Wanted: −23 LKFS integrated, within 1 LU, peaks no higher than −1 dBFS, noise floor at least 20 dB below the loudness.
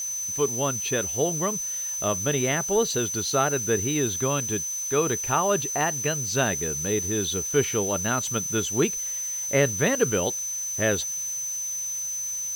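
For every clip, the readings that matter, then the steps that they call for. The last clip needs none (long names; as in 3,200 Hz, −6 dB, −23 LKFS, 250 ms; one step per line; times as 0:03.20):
interfering tone 6,100 Hz; level of the tone −28 dBFS; background noise floor −31 dBFS; target noise floor −45 dBFS; integrated loudness −24.5 LKFS; sample peak −9.0 dBFS; target loudness −23.0 LKFS
→ notch filter 6,100 Hz, Q 30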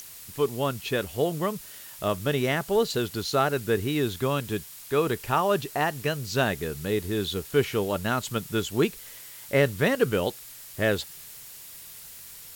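interfering tone none found; background noise floor −45 dBFS; target noise floor −47 dBFS
→ broadband denoise 6 dB, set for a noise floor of −45 dBFS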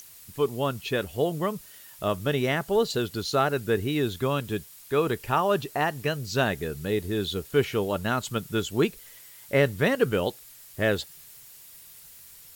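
background noise floor −49 dBFS; integrated loudness −27.0 LKFS; sample peak −9.5 dBFS; target loudness −23.0 LKFS
→ level +4 dB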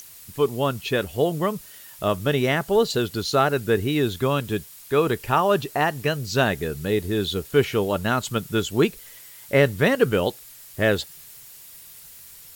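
integrated loudness −23.0 LKFS; sample peak −5.5 dBFS; background noise floor −45 dBFS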